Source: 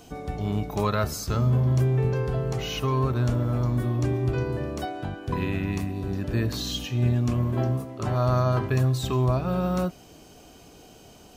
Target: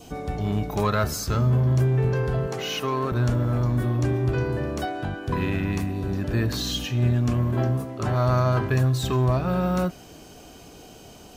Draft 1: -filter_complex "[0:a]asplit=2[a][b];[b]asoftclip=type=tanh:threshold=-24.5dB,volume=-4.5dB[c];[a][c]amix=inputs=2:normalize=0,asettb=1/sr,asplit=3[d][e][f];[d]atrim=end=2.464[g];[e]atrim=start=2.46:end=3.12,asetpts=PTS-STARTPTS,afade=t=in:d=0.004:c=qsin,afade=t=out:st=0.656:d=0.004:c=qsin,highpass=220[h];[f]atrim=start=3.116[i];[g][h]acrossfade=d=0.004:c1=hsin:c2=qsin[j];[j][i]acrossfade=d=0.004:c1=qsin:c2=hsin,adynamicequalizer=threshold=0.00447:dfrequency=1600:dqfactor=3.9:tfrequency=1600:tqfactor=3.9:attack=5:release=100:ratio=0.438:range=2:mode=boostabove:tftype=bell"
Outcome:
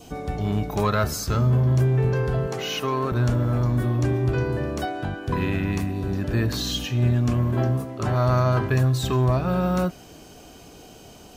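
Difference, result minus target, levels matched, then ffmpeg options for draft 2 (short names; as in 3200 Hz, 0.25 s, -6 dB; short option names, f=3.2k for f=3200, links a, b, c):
soft clip: distortion -4 dB
-filter_complex "[0:a]asplit=2[a][b];[b]asoftclip=type=tanh:threshold=-30.5dB,volume=-4.5dB[c];[a][c]amix=inputs=2:normalize=0,asettb=1/sr,asplit=3[d][e][f];[d]atrim=end=2.464[g];[e]atrim=start=2.46:end=3.12,asetpts=PTS-STARTPTS,afade=t=in:d=0.004:c=qsin,afade=t=out:st=0.656:d=0.004:c=qsin,highpass=220[h];[f]atrim=start=3.116[i];[g][h]acrossfade=d=0.004:c1=hsin:c2=qsin[j];[j][i]acrossfade=d=0.004:c1=qsin:c2=hsin,adynamicequalizer=threshold=0.00447:dfrequency=1600:dqfactor=3.9:tfrequency=1600:tqfactor=3.9:attack=5:release=100:ratio=0.438:range=2:mode=boostabove:tftype=bell"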